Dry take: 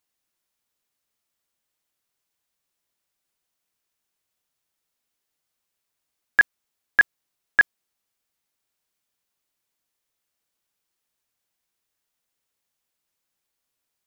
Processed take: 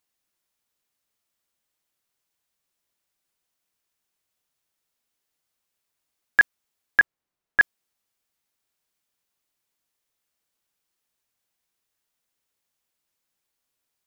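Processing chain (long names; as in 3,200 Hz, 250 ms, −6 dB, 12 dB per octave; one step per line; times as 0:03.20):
0:07.00–0:07.60: high-shelf EQ 2,500 Hz −11 dB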